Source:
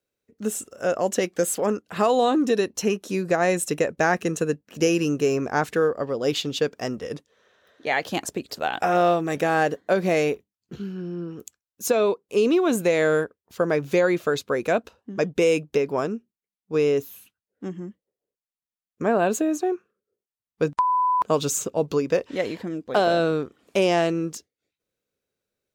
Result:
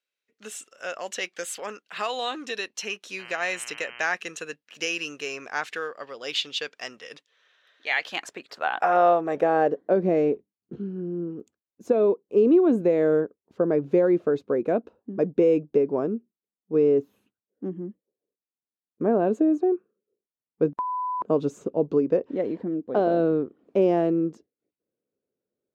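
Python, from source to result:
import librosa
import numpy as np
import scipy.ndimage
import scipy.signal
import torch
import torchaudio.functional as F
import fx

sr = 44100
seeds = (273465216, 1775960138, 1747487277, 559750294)

y = fx.dmg_buzz(x, sr, base_hz=120.0, harmonics=26, level_db=-41.0, tilt_db=-2, odd_only=False, at=(3.18, 4.05), fade=0.02)
y = fx.filter_sweep_bandpass(y, sr, from_hz=2800.0, to_hz=310.0, start_s=7.89, end_s=10.03, q=1.1)
y = y * 10.0 ** (3.0 / 20.0)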